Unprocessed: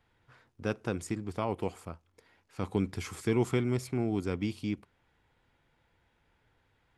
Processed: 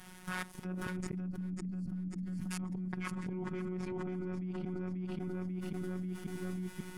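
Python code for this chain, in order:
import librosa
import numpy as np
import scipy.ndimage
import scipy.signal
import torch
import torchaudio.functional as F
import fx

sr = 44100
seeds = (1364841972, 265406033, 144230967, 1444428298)

p1 = fx.law_mismatch(x, sr, coded='A')
p2 = fx.level_steps(p1, sr, step_db=24)
p3 = fx.env_lowpass_down(p2, sr, base_hz=1500.0, full_db=-49.0)
p4 = fx.graphic_eq_31(p3, sr, hz=(200, 500, 4000, 10000), db=(12, -9, -4, 8))
p5 = fx.robotise(p4, sr, hz=183.0)
p6 = fx.auto_swell(p5, sr, attack_ms=621.0)
p7 = fx.spec_erase(p6, sr, start_s=1.16, length_s=0.76, low_hz=330.0, high_hz=4100.0)
p8 = p7 + fx.echo_feedback(p7, sr, ms=539, feedback_pct=37, wet_db=-3.5, dry=0)
p9 = fx.env_flatten(p8, sr, amount_pct=100)
y = p9 * 10.0 ** (4.5 / 20.0)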